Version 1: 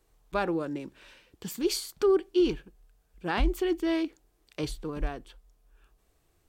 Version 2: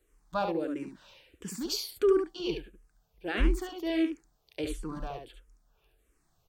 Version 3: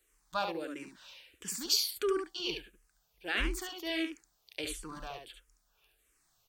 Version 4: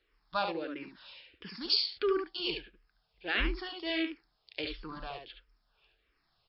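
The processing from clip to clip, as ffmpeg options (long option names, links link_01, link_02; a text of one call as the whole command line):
ffmpeg -i in.wav -filter_complex "[0:a]aecho=1:1:71:0.531,asplit=2[link_01][link_02];[link_02]afreqshift=-1.5[link_03];[link_01][link_03]amix=inputs=2:normalize=1" out.wav
ffmpeg -i in.wav -af "tiltshelf=frequency=970:gain=-8,volume=-2dB" out.wav
ffmpeg -i in.wav -af "volume=2dB" -ar 12000 -c:a libmp3lame -b:a 40k out.mp3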